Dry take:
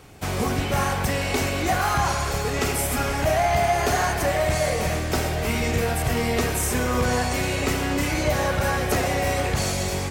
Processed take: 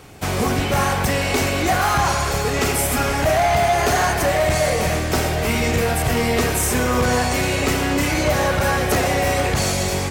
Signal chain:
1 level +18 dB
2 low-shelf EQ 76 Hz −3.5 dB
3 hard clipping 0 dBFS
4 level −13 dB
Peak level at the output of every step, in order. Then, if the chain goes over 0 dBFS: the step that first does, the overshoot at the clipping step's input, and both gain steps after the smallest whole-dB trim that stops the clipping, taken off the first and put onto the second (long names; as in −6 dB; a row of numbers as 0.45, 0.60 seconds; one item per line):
+5.0, +5.5, 0.0, −13.0 dBFS
step 1, 5.5 dB
step 1 +12 dB, step 4 −7 dB